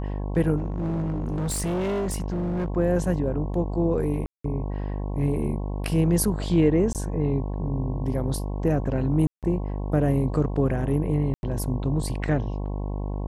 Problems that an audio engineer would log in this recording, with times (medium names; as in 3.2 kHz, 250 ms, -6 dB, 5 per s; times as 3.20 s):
buzz 50 Hz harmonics 22 -29 dBFS
0.57–2.68 s: clipped -23.5 dBFS
4.26–4.44 s: dropout 184 ms
6.93–6.95 s: dropout 18 ms
9.27–9.43 s: dropout 157 ms
11.34–11.43 s: dropout 91 ms